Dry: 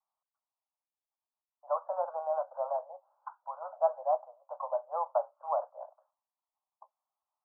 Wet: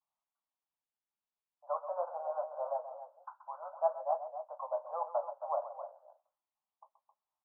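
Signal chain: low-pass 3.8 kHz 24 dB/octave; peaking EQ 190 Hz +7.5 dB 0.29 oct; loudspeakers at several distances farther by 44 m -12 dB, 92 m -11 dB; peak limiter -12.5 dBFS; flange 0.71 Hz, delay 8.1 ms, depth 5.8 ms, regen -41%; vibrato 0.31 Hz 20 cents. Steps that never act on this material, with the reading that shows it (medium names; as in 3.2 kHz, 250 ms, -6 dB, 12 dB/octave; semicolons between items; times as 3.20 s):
low-pass 3.8 kHz: input has nothing above 1.4 kHz; peaking EQ 190 Hz: input has nothing below 450 Hz; peak limiter -12.5 dBFS: peak at its input -16.0 dBFS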